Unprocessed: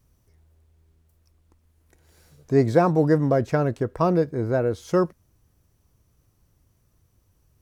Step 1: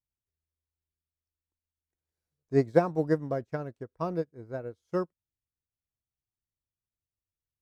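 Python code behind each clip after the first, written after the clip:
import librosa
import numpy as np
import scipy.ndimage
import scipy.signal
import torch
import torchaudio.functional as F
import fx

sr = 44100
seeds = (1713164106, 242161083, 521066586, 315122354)

y = fx.upward_expand(x, sr, threshold_db=-34.0, expansion=2.5)
y = F.gain(torch.from_numpy(y), -2.5).numpy()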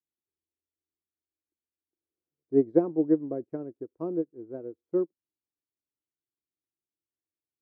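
y = fx.bandpass_q(x, sr, hz=330.0, q=3.5)
y = F.gain(torch.from_numpy(y), 7.5).numpy()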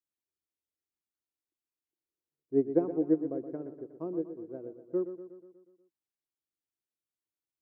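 y = fx.echo_feedback(x, sr, ms=121, feedback_pct=58, wet_db=-11)
y = F.gain(torch.from_numpy(y), -4.5).numpy()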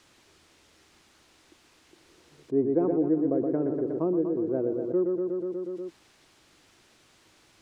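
y = fx.air_absorb(x, sr, metres=84.0)
y = fx.env_flatten(y, sr, amount_pct=70)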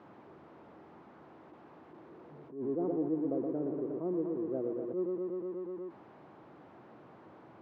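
y = x + 0.5 * 10.0 ** (-36.0 / 20.0) * np.sign(x)
y = scipy.signal.sosfilt(scipy.signal.cheby1(2, 1.0, [150.0, 920.0], 'bandpass', fs=sr, output='sos'), y)
y = fx.attack_slew(y, sr, db_per_s=130.0)
y = F.gain(torch.from_numpy(y), -7.5).numpy()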